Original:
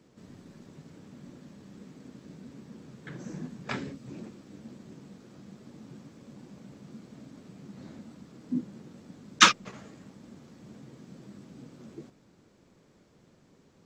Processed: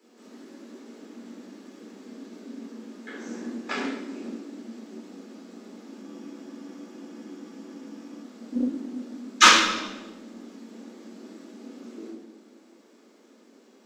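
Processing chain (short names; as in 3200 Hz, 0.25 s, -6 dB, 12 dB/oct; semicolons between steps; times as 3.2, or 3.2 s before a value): steep high-pass 220 Hz 72 dB/oct; high shelf 8500 Hz +5 dB; in parallel at -9.5 dB: hard clip -15.5 dBFS, distortion -7 dB; on the sum: reverb, pre-delay 10 ms, DRR -5.5 dB; spectral freeze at 6.03, 2.19 s; Doppler distortion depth 0.21 ms; gain -5 dB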